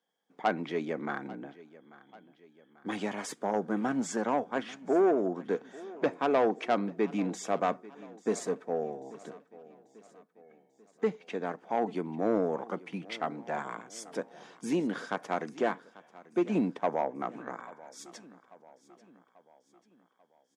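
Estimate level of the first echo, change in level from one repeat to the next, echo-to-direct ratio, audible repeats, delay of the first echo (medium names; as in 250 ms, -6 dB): -20.0 dB, -6.0 dB, -18.5 dB, 3, 840 ms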